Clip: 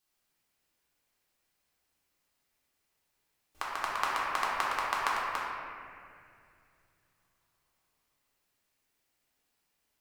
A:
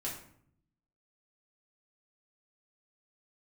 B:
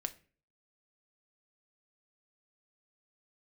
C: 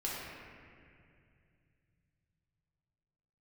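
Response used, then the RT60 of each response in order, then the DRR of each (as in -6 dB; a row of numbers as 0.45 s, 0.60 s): C; 0.65 s, 0.40 s, 2.4 s; -5.0 dB, 7.5 dB, -6.5 dB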